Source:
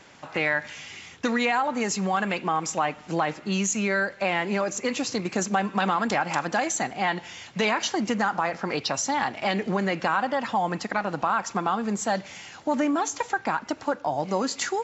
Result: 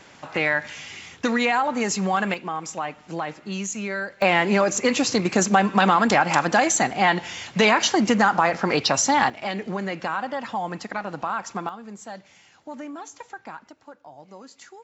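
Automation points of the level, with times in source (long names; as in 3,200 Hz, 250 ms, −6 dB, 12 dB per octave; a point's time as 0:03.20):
+2.5 dB
from 0:02.34 −4 dB
from 0:04.22 +6.5 dB
from 0:09.30 −3 dB
from 0:11.69 −12 dB
from 0:13.69 −18 dB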